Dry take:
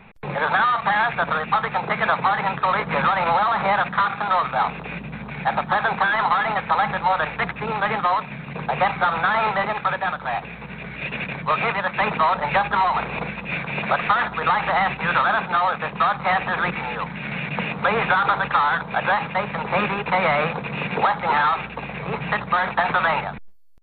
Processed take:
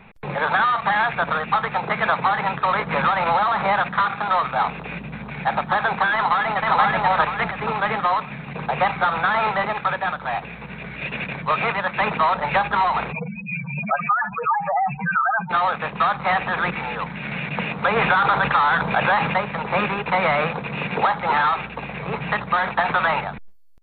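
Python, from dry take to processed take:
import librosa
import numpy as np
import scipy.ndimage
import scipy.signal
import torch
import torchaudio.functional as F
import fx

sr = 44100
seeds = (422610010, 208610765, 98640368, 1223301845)

y = fx.echo_throw(x, sr, start_s=6.14, length_s=0.62, ms=480, feedback_pct=40, wet_db=-0.5)
y = fx.spec_expand(y, sr, power=4.0, at=(13.11, 15.49), fade=0.02)
y = fx.env_flatten(y, sr, amount_pct=50, at=(17.96, 19.38))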